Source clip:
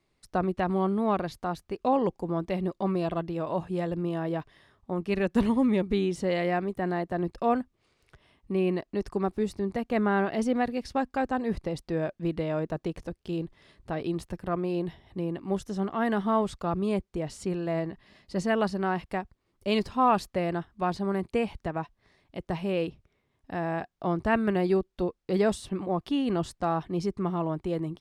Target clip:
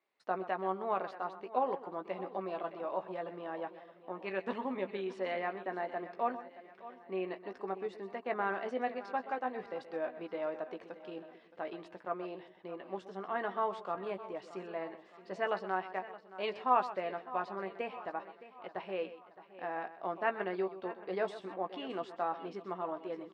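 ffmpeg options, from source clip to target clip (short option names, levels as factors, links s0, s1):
-filter_complex "[0:a]highpass=510,lowpass=2700,asplit=2[s0][s1];[s1]adelay=16,volume=0.422[s2];[s0][s2]amix=inputs=2:normalize=0,asplit=2[s3][s4];[s4]aecho=0:1:742|1484|2226|2968:0.158|0.0777|0.0381|0.0186[s5];[s3][s5]amix=inputs=2:normalize=0,atempo=1.2,asplit=2[s6][s7];[s7]aecho=0:1:127:0.2[s8];[s6][s8]amix=inputs=2:normalize=0,volume=0.562"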